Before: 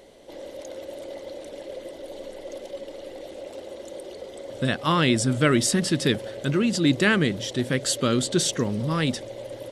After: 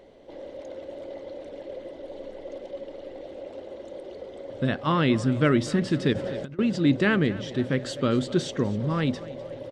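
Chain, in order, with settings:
repeating echo 251 ms, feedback 49%, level −19 dB
on a send at −20.5 dB: convolution reverb, pre-delay 4 ms
0:06.13–0:06.59: on the sum: compressor whose output falls as the input rises −30 dBFS, ratio −0.5
head-to-tape spacing loss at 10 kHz 22 dB

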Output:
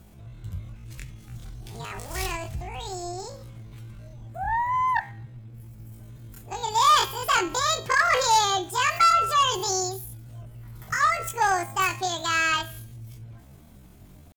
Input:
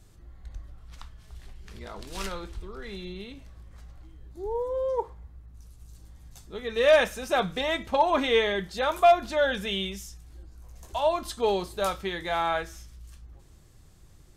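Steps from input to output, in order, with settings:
hum removal 137.9 Hz, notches 13
harmonic generator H 4 −35 dB, 5 −16 dB, 7 −44 dB, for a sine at −9.5 dBFS
pitch shifter +11.5 semitones

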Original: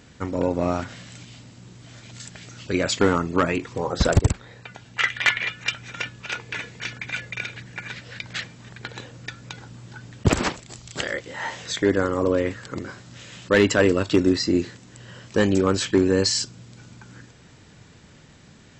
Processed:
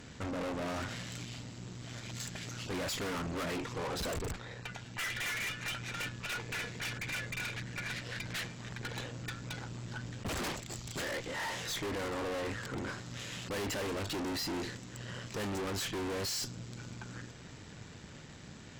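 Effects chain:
tube saturation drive 38 dB, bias 0.65
level +3 dB

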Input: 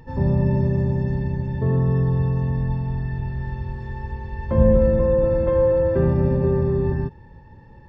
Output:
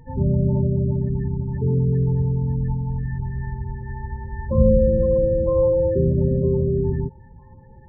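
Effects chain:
spectral peaks only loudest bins 16
delay with a high-pass on its return 956 ms, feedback 46%, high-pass 3,100 Hz, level −5.5 dB

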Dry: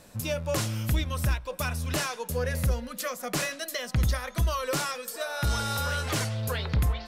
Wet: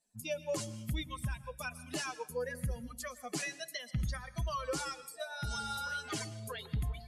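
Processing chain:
spectral dynamics exaggerated over time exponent 2
low-pass filter 11,000 Hz 24 dB per octave
parametric band 76 Hz −11.5 dB 0.57 octaves
convolution reverb RT60 0.65 s, pre-delay 112 ms, DRR 16 dB
one half of a high-frequency compander encoder only
level −3.5 dB

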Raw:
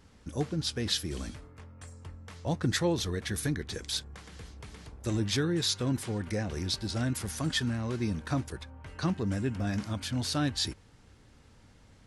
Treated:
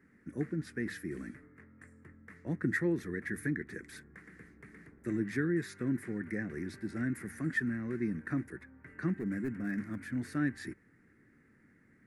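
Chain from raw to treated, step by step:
three-way crossover with the lows and the highs turned down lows −20 dB, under 150 Hz, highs −21 dB, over 2,900 Hz
mains-hum notches 50/100 Hz
0:09.19–0:09.98: hard clipping −28.5 dBFS, distortion −25 dB
drawn EQ curve 360 Hz 0 dB, 530 Hz −12 dB, 910 Hz −17 dB, 1,900 Hz +6 dB, 3,100 Hz −20 dB, 9,800 Hz +8 dB

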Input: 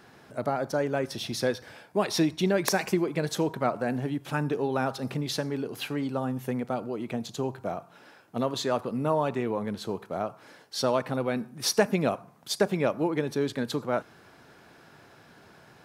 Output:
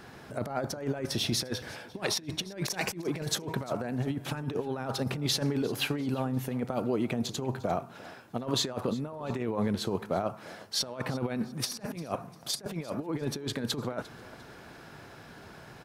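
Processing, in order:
low-shelf EQ 63 Hz +12 dB
compressor whose output falls as the input rises −31 dBFS, ratio −0.5
on a send: repeating echo 349 ms, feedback 37%, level −20 dB

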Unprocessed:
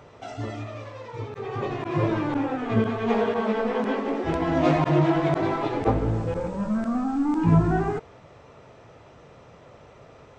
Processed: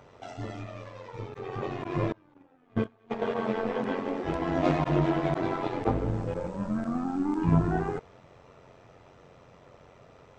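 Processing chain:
0:02.12–0:03.22: noise gate −20 dBFS, range −29 dB
amplitude modulation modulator 90 Hz, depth 45%
level −2 dB

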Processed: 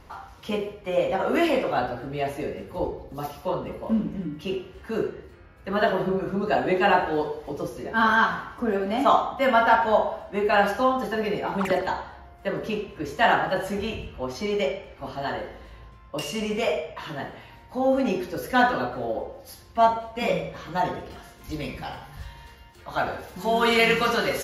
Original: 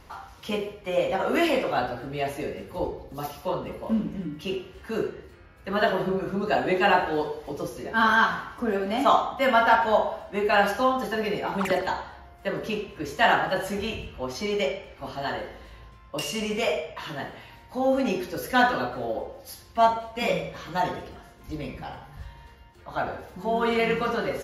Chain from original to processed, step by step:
high-shelf EQ 2,000 Hz −4.5 dB, from 0:21.10 +6.5 dB, from 0:23.36 +11.5 dB
level +1.5 dB

